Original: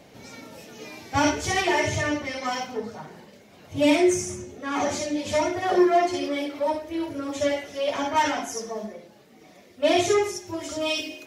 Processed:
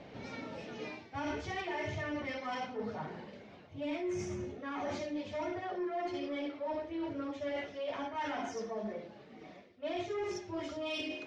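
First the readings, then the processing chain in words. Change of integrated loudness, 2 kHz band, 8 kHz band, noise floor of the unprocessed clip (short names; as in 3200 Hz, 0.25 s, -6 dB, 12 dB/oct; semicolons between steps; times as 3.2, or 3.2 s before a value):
-14.0 dB, -13.0 dB, -22.5 dB, -52 dBFS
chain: Bessel low-pass 3200 Hz, order 4; reverse; compressor 6:1, threshold -35 dBFS, peak gain reduction 19 dB; reverse; soft clip -27 dBFS, distortion -25 dB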